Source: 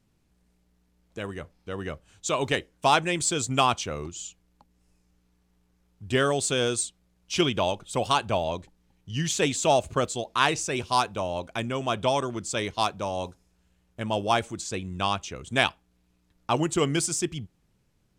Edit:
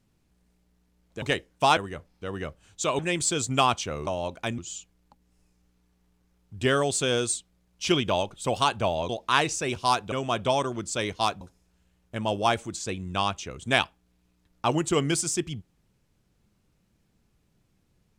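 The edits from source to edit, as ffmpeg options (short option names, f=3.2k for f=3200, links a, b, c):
-filter_complex "[0:a]asplit=9[a][b][c][d][e][f][g][h][i];[a]atrim=end=1.222[j];[b]atrim=start=2.438:end=2.992[k];[c]atrim=start=1.218:end=2.442[l];[d]atrim=start=2.988:end=4.072[m];[e]atrim=start=11.188:end=11.702[n];[f]atrim=start=4.068:end=8.582[o];[g]atrim=start=10.158:end=11.192[p];[h]atrim=start=11.698:end=12.992[q];[i]atrim=start=13.258[r];[j][k]acrossfade=d=0.004:c1=hsin:c2=hsin[s];[s][l]acrossfade=d=0.004:c1=hsin:c2=hsin[t];[t][m]acrossfade=d=0.004:c1=hsin:c2=hsin[u];[u][n]acrossfade=d=0.004:c1=hsin:c2=hsin[v];[v][o]acrossfade=d=0.004:c1=hsin:c2=hsin[w];[w][p]acrossfade=d=0.004:c1=hsin:c2=hsin[x];[x][q]acrossfade=d=0.004:c1=hsin:c2=hsin[y];[y][r]acrossfade=d=0.004:c1=hsin:c2=hsin"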